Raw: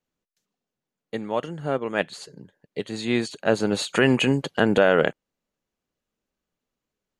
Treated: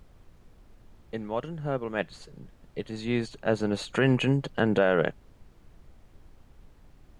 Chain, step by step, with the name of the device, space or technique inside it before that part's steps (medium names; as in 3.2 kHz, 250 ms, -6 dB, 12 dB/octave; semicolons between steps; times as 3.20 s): car interior (peaking EQ 130 Hz +6 dB; treble shelf 4.3 kHz -8 dB; brown noise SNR 21 dB); trim -5 dB